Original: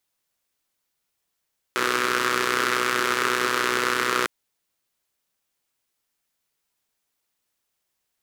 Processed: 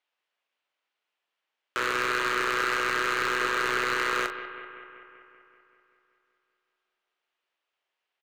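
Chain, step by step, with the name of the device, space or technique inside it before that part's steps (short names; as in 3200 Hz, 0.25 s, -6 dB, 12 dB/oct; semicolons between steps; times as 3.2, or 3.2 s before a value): megaphone (BPF 490–2700 Hz; bell 2900 Hz +5 dB 0.6 oct; hard clip -19.5 dBFS, distortion -8 dB; doubler 41 ms -9 dB); analogue delay 0.192 s, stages 4096, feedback 65%, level -12 dB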